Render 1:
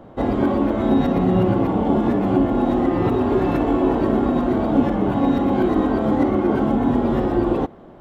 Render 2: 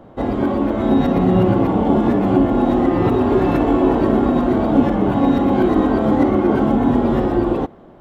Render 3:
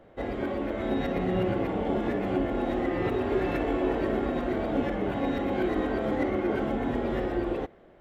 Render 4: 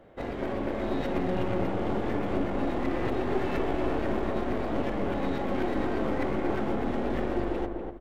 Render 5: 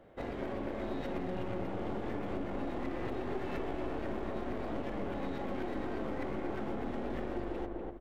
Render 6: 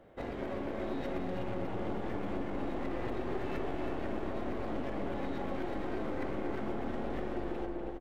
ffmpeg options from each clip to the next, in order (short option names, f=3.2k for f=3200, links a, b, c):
-af "dynaudnorm=f=190:g=9:m=4dB"
-af "equalizer=f=125:t=o:w=1:g=-5,equalizer=f=250:t=o:w=1:g=-6,equalizer=f=500:t=o:w=1:g=3,equalizer=f=1k:t=o:w=1:g=-7,equalizer=f=2k:t=o:w=1:g=8,volume=-9dB"
-filter_complex "[0:a]aeval=exprs='clip(val(0),-1,0.015)':c=same,asplit=2[a][b];[b]adelay=245,lowpass=f=1.1k:p=1,volume=-3dB,asplit=2[c][d];[d]adelay=245,lowpass=f=1.1k:p=1,volume=0.36,asplit=2[e][f];[f]adelay=245,lowpass=f=1.1k:p=1,volume=0.36,asplit=2[g][h];[h]adelay=245,lowpass=f=1.1k:p=1,volume=0.36,asplit=2[i][j];[j]adelay=245,lowpass=f=1.1k:p=1,volume=0.36[k];[a][c][e][g][i][k]amix=inputs=6:normalize=0"
-af "acompressor=threshold=-30dB:ratio=2.5,volume=-4dB"
-af "aecho=1:1:320:0.447"